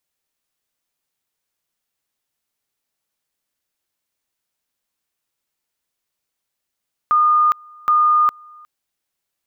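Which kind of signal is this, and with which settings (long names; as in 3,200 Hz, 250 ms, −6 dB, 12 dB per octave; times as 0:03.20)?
tone at two levels in turn 1,220 Hz −11 dBFS, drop 28.5 dB, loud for 0.41 s, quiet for 0.36 s, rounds 2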